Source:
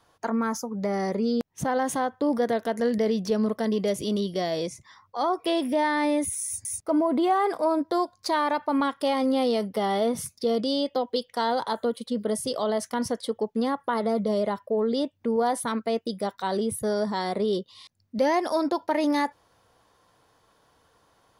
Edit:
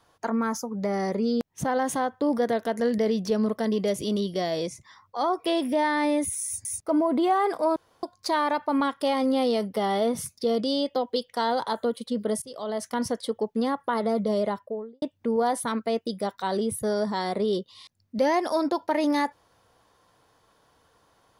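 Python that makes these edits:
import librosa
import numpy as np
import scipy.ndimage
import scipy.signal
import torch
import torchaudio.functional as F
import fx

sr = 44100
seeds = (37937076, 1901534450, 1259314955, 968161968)

y = fx.studio_fade_out(x, sr, start_s=14.45, length_s=0.57)
y = fx.edit(y, sr, fx.room_tone_fill(start_s=7.76, length_s=0.27),
    fx.fade_in_from(start_s=12.42, length_s=0.53, floor_db=-19.5), tone=tone)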